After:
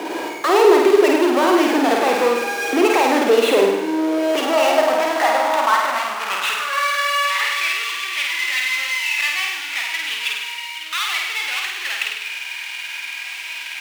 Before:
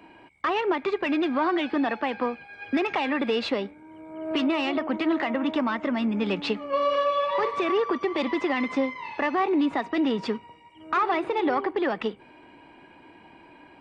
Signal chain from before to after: steep low-pass 3500 Hz; power-law curve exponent 0.35; backlash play -32.5 dBFS; high-pass sweep 400 Hz -> 2400 Hz, 3.84–7.82; flutter echo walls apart 8.7 m, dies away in 0.93 s

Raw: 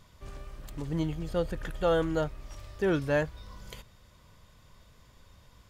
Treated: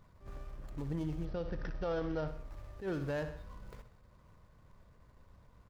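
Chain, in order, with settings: median filter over 15 samples; 1.25–2.28 brick-wall FIR low-pass 6100 Hz; feedback echo 64 ms, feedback 45%, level -14 dB; limiter -25.5 dBFS, peak gain reduction 9 dB; attack slew limiter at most 170 dB/s; gain -3 dB

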